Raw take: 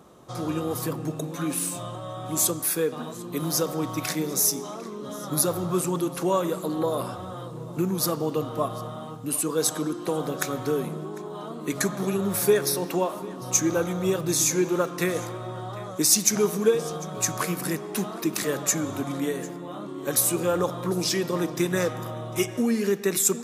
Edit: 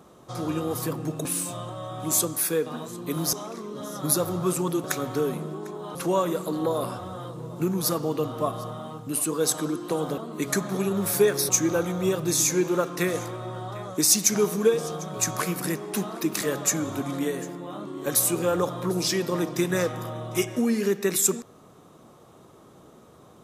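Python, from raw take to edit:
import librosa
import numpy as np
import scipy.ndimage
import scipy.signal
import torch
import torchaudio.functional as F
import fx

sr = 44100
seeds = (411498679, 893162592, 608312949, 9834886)

y = fx.edit(x, sr, fx.cut(start_s=1.25, length_s=0.26),
    fx.cut(start_s=3.59, length_s=1.02),
    fx.move(start_s=10.35, length_s=1.11, to_s=6.12),
    fx.cut(start_s=12.77, length_s=0.73), tone=tone)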